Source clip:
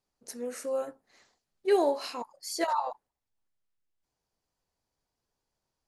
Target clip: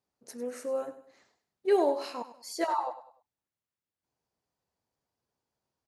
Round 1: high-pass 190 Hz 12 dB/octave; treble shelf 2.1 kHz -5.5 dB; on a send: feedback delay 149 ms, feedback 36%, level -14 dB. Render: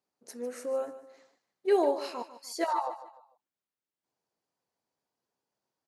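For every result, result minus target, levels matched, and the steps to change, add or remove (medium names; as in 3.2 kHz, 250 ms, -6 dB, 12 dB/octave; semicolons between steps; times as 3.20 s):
echo 50 ms late; 125 Hz band -3.0 dB
change: feedback delay 99 ms, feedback 36%, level -14 dB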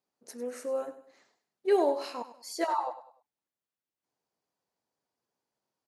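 125 Hz band -3.0 dB
change: high-pass 77 Hz 12 dB/octave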